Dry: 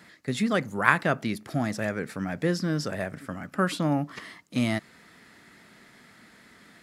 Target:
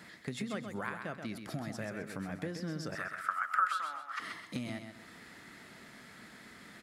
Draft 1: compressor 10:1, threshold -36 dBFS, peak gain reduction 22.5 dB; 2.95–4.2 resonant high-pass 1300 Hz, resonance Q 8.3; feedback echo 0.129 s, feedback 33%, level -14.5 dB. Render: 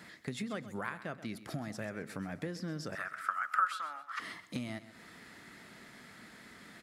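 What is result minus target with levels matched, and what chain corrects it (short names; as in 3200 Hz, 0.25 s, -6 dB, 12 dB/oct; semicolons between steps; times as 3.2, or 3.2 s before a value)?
echo-to-direct -7.5 dB
compressor 10:1, threshold -36 dBFS, peak gain reduction 22.5 dB; 2.95–4.2 resonant high-pass 1300 Hz, resonance Q 8.3; feedback echo 0.129 s, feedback 33%, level -7 dB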